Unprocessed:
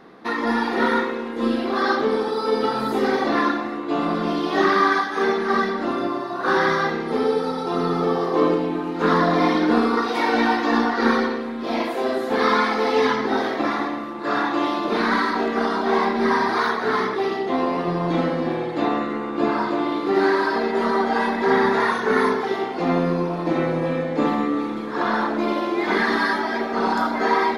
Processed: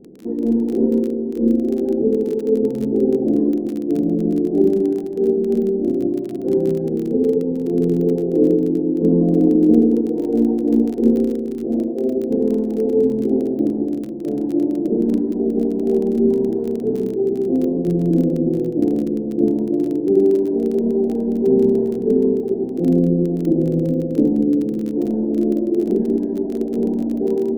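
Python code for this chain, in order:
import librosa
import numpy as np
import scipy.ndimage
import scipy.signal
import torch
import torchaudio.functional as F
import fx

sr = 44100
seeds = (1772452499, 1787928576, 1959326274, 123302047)

y = scipy.signal.sosfilt(scipy.signal.cheby2(4, 50, 1100.0, 'lowpass', fs=sr, output='sos'), x)
y = y + 10.0 ** (-13.5 / 20.0) * np.pad(y, (int(452 * sr / 1000.0), 0))[:len(y)]
y = fx.dmg_crackle(y, sr, seeds[0], per_s=25.0, level_db=-32.0)
y = F.gain(torch.from_numpy(y), 7.0).numpy()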